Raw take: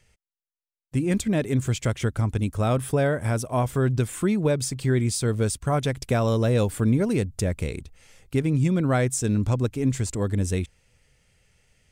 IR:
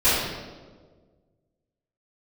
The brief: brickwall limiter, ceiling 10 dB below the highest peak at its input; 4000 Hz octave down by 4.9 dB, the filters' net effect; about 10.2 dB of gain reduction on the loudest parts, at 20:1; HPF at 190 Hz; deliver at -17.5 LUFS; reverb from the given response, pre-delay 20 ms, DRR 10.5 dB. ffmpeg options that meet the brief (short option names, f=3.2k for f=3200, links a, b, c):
-filter_complex "[0:a]highpass=190,equalizer=f=4k:t=o:g=-6.5,acompressor=threshold=-29dB:ratio=20,alimiter=level_in=4.5dB:limit=-24dB:level=0:latency=1,volume=-4.5dB,asplit=2[a][b];[1:a]atrim=start_sample=2205,adelay=20[c];[b][c]afir=irnorm=-1:irlink=0,volume=-29.5dB[d];[a][d]amix=inputs=2:normalize=0,volume=20.5dB"